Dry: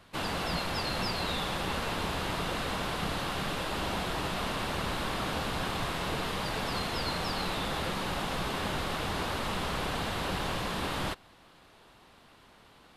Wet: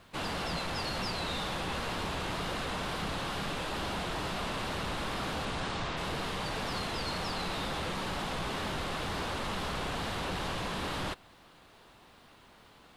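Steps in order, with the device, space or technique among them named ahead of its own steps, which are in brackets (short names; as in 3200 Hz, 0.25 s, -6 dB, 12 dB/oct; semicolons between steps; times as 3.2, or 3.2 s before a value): compact cassette (soft clip -28.5 dBFS, distortion -16 dB; LPF 11000 Hz 12 dB/oct; wow and flutter; white noise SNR 41 dB); 5.45–5.96 LPF 12000 Hz -> 6400 Hz 24 dB/oct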